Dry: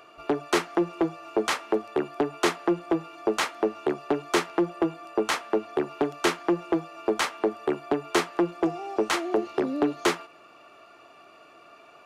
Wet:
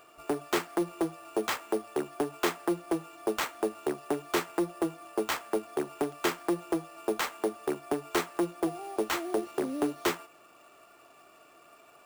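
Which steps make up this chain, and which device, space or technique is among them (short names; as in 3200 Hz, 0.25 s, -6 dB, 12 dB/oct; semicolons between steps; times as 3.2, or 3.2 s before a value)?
early companding sampler (sample-rate reducer 10000 Hz, jitter 0%; companded quantiser 6-bit); gain -5 dB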